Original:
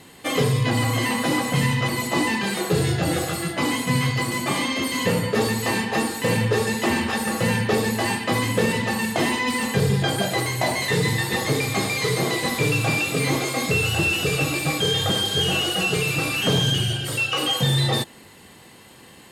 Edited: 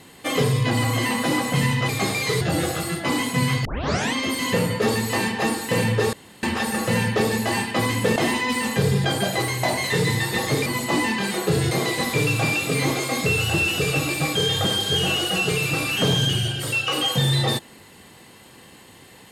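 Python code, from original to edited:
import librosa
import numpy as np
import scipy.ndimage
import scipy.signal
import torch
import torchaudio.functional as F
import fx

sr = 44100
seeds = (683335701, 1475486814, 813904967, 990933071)

y = fx.edit(x, sr, fx.swap(start_s=1.89, length_s=1.05, other_s=11.64, other_length_s=0.52),
    fx.tape_start(start_s=4.18, length_s=0.49),
    fx.room_tone_fill(start_s=6.66, length_s=0.3),
    fx.cut(start_s=8.69, length_s=0.45), tone=tone)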